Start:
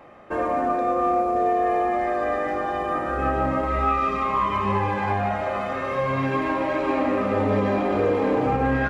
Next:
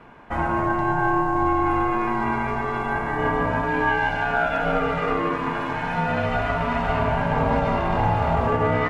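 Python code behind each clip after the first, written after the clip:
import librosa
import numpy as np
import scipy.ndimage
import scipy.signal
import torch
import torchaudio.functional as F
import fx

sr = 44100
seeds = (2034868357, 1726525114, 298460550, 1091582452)

y = x * np.sin(2.0 * np.pi * 370.0 * np.arange(len(x)) / sr)
y = F.gain(torch.from_numpy(y), 3.5).numpy()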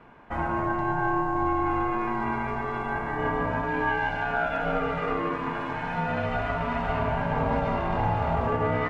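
y = fx.high_shelf(x, sr, hz=6200.0, db=-7.0)
y = F.gain(torch.from_numpy(y), -4.5).numpy()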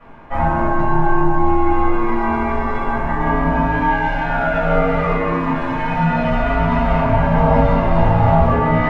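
y = fx.room_shoebox(x, sr, seeds[0], volume_m3=280.0, walls='furnished', distance_m=6.2)
y = F.gain(torch.from_numpy(y), -2.0).numpy()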